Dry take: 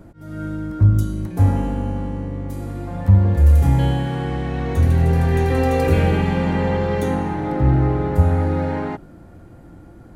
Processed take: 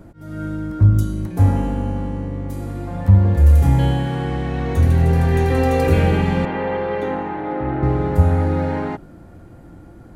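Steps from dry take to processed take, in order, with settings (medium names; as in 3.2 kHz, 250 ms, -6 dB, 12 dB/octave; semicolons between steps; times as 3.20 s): 6.45–7.83 s: three-band isolator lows -14 dB, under 270 Hz, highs -22 dB, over 3.5 kHz; trim +1 dB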